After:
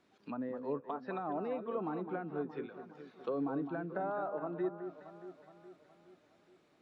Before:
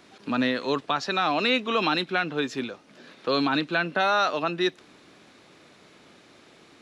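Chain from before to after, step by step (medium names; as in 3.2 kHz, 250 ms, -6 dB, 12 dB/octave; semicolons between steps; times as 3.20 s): treble shelf 2.1 kHz -7 dB; low-pass that closes with the level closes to 770 Hz, closed at -23.5 dBFS; spectral noise reduction 7 dB; echo whose repeats swap between lows and highs 209 ms, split 1.6 kHz, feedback 71%, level -8.5 dB; trim -9 dB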